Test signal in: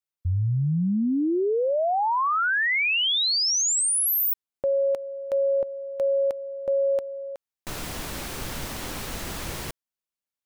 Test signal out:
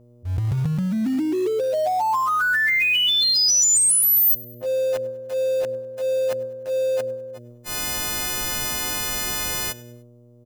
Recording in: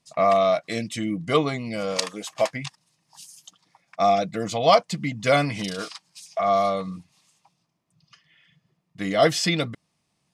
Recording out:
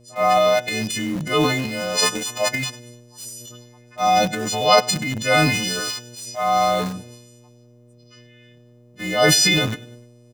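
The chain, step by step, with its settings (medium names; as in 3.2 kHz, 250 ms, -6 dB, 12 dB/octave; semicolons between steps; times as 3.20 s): partials quantised in pitch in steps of 3 st; treble shelf 8 kHz -5.5 dB; in parallel at -9 dB: bit crusher 5-bit; on the sum: mains buzz 120 Hz, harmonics 5, -51 dBFS -4 dB/octave; transient shaper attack -5 dB, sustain +9 dB; on a send: feedback delay 100 ms, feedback 45%, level -22.5 dB; on the sum: trim -1 dB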